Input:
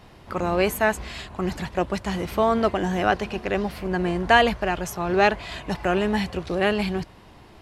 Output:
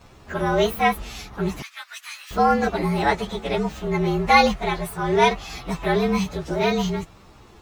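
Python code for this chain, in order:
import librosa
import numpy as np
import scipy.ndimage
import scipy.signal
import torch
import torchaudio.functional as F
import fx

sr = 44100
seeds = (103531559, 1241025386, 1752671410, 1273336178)

y = fx.partial_stretch(x, sr, pct=113)
y = fx.highpass(y, sr, hz=1500.0, slope=24, at=(1.62, 2.31))
y = F.gain(torch.from_numpy(y), 3.5).numpy()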